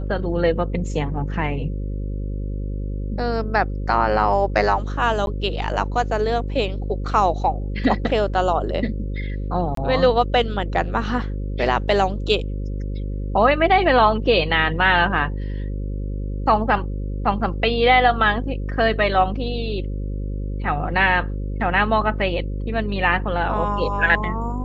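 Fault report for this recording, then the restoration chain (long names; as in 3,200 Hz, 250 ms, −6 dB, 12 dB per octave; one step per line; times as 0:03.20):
mains buzz 50 Hz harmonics 11 −26 dBFS
0:05.26–0:05.27: drop-out 11 ms
0:09.75–0:09.77: drop-out 23 ms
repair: hum removal 50 Hz, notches 11
repair the gap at 0:05.26, 11 ms
repair the gap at 0:09.75, 23 ms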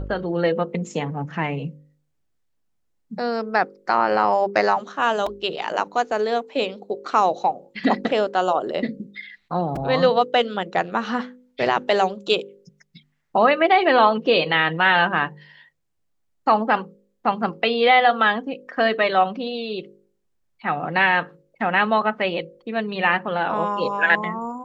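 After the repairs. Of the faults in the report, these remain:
none of them is left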